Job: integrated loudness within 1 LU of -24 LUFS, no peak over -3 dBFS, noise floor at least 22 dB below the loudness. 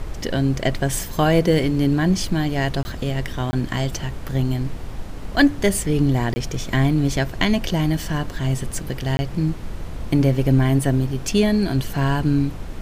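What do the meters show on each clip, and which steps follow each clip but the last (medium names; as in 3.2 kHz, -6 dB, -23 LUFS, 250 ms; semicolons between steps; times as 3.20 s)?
dropouts 4; longest dropout 20 ms; noise floor -32 dBFS; noise floor target -44 dBFS; loudness -21.5 LUFS; peak level -4.0 dBFS; loudness target -24.0 LUFS
-> interpolate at 2.83/3.51/6.34/9.17 s, 20 ms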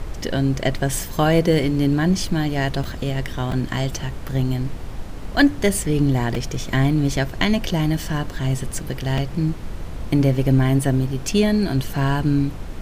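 dropouts 0; noise floor -32 dBFS; noise floor target -44 dBFS
-> noise print and reduce 12 dB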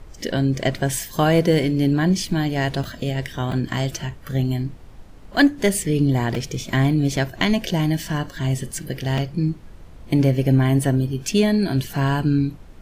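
noise floor -42 dBFS; noise floor target -44 dBFS
-> noise print and reduce 6 dB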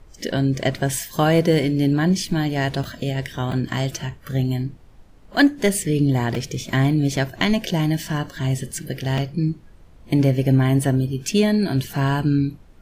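noise floor -47 dBFS; loudness -21.5 LUFS; peak level -5.0 dBFS; loudness target -24.0 LUFS
-> trim -2.5 dB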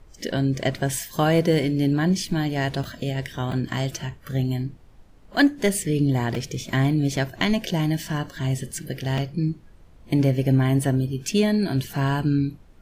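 loudness -24.0 LUFS; peak level -7.5 dBFS; noise floor -50 dBFS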